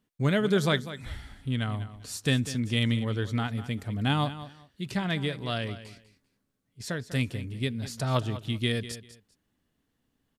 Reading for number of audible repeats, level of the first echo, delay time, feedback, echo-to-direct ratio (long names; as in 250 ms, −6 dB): 2, −14.0 dB, 197 ms, 21%, −14.0 dB